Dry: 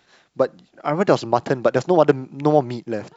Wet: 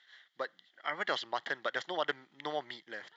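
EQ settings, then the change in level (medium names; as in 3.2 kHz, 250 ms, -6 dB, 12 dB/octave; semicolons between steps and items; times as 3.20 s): two resonant band-passes 2.5 kHz, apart 0.74 oct; +3.5 dB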